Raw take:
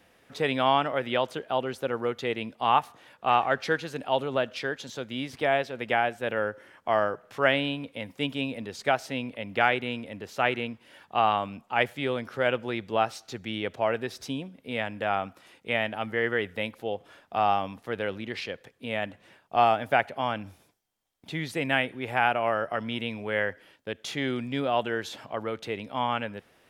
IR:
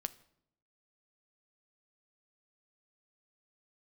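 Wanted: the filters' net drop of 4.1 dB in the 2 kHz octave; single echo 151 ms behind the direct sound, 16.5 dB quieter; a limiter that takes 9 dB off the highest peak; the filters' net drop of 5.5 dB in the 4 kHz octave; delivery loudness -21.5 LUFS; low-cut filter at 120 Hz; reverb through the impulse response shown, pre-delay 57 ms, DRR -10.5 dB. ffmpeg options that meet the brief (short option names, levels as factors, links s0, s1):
-filter_complex "[0:a]highpass=120,equalizer=f=2000:t=o:g=-4,equalizer=f=4000:t=o:g=-6,alimiter=limit=0.112:level=0:latency=1,aecho=1:1:151:0.15,asplit=2[s0][s1];[1:a]atrim=start_sample=2205,adelay=57[s2];[s1][s2]afir=irnorm=-1:irlink=0,volume=3.76[s3];[s0][s3]amix=inputs=2:normalize=0,volume=1.06"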